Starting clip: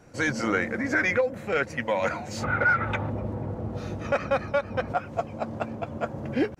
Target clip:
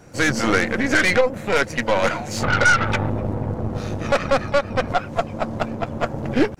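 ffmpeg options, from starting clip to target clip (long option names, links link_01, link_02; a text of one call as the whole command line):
ffmpeg -i in.wav -filter_complex "[0:a]asplit=2[link_01][link_02];[link_02]asetrate=66075,aresample=44100,atempo=0.66742,volume=-18dB[link_03];[link_01][link_03]amix=inputs=2:normalize=0,aeval=exprs='0.224*(cos(1*acos(clip(val(0)/0.224,-1,1)))-cos(1*PI/2))+0.0282*(cos(6*acos(clip(val(0)/0.224,-1,1)))-cos(6*PI/2))':channel_layout=same,bass=frequency=250:gain=1,treble=frequency=4000:gain=3,volume=6dB" out.wav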